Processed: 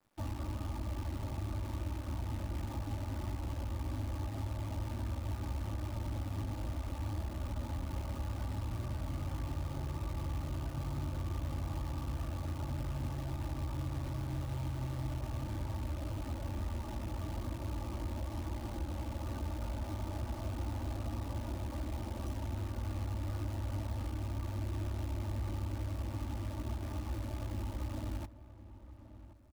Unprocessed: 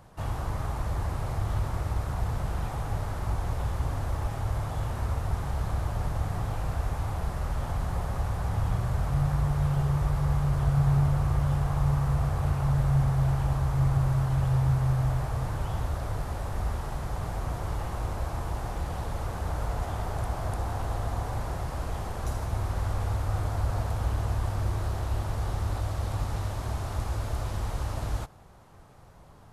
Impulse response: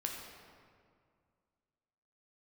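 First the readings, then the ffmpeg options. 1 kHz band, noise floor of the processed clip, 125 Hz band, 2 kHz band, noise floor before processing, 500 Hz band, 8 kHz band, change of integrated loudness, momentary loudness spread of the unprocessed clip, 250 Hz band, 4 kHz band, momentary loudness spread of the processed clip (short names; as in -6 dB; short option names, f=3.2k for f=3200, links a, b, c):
-11.5 dB, -46 dBFS, -10.5 dB, -10.5 dB, -37 dBFS, -9.0 dB, -9.0 dB, -9.5 dB, 8 LU, -6.5 dB, -6.0 dB, 2 LU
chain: -filter_complex "[0:a]highpass=86,afftdn=nr=23:nf=-37,equalizer=f=300:w=2.2:g=9.5,aecho=1:1:3.4:0.82,acrossover=split=210|3000[a][b][c];[b]acompressor=threshold=-52dB:ratio=2[d];[a][d][c]amix=inputs=3:normalize=0,acrossover=split=310|1200|1600[e][f][g][h];[e]alimiter=level_in=3dB:limit=-24dB:level=0:latency=1:release=115,volume=-3dB[i];[i][f][g][h]amix=inputs=4:normalize=0,acompressor=threshold=-35dB:ratio=3,acrusher=bits=9:dc=4:mix=0:aa=0.000001,asplit=2[j][k];[k]adelay=1077,lowpass=f=1.6k:p=1,volume=-14.5dB,asplit=2[l][m];[m]adelay=1077,lowpass=f=1.6k:p=1,volume=0.4,asplit=2[n][o];[o]adelay=1077,lowpass=f=1.6k:p=1,volume=0.4,asplit=2[p][q];[q]adelay=1077,lowpass=f=1.6k:p=1,volume=0.4[r];[j][l][n][p][r]amix=inputs=5:normalize=0"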